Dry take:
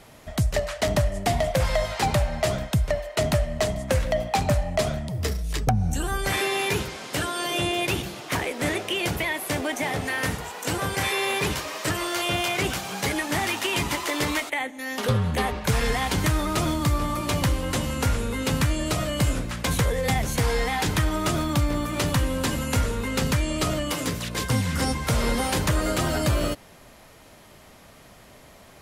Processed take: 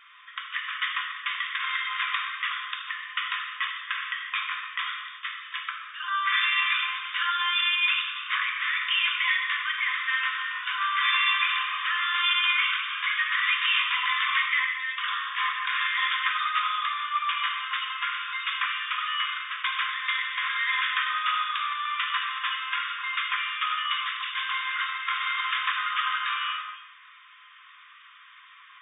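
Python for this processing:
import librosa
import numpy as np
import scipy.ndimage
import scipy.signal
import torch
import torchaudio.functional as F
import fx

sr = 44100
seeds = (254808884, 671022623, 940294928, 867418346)

y = fx.brickwall_bandpass(x, sr, low_hz=1000.0, high_hz=3700.0)
y = fx.rev_gated(y, sr, seeds[0], gate_ms=410, shape='falling', drr_db=0.0)
y = F.gain(torch.from_numpy(y), 2.0).numpy()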